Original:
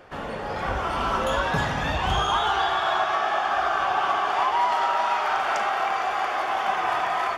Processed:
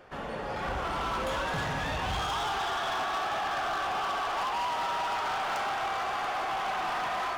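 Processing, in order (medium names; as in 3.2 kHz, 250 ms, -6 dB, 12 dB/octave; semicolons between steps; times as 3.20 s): two-band feedback delay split 820 Hz, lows 145 ms, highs 218 ms, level -9 dB; flange 0.28 Hz, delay 5 ms, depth 1.7 ms, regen -83%; hard clipper -28.5 dBFS, distortion -9 dB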